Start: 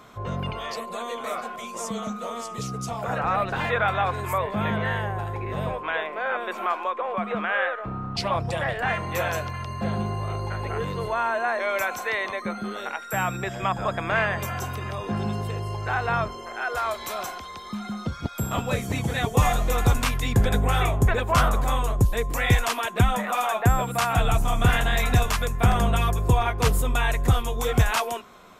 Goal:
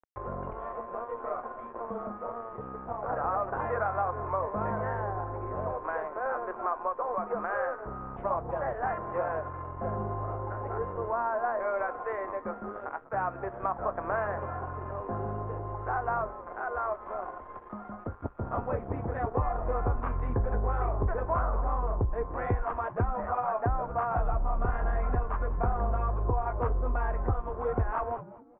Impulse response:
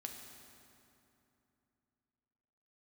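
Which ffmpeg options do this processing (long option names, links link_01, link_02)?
-filter_complex "[0:a]flanger=delay=4.9:depth=8.7:regen=-67:speed=0.12:shape=sinusoidal,aresample=8000,aeval=exprs='sgn(val(0))*max(abs(val(0))-0.00708,0)':channel_layout=same,aresample=44100,acompressor=mode=upward:threshold=-35dB:ratio=2.5,lowpass=frequency=1300:width=0.5412,lowpass=frequency=1300:width=1.3066,equalizer=frequency=160:width_type=o:width=1.1:gain=-14,asplit=2[link_01][link_02];[link_02]asplit=3[link_03][link_04][link_05];[link_03]adelay=197,afreqshift=-110,volume=-18dB[link_06];[link_04]adelay=394,afreqshift=-220,volume=-26.9dB[link_07];[link_05]adelay=591,afreqshift=-330,volume=-35.7dB[link_08];[link_06][link_07][link_08]amix=inputs=3:normalize=0[link_09];[link_01][link_09]amix=inputs=2:normalize=0,acompressor=threshold=-30dB:ratio=4,aemphasis=mode=reproduction:type=75fm,volume=4.5dB"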